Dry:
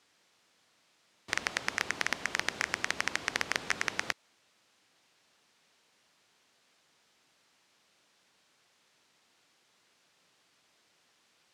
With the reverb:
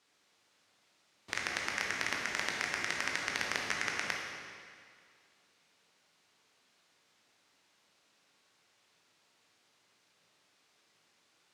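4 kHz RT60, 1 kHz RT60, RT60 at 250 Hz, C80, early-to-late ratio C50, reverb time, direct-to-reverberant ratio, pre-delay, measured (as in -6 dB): 1.9 s, 2.1 s, 2.1 s, 2.5 dB, 1.0 dB, 2.1 s, -1.0 dB, 18 ms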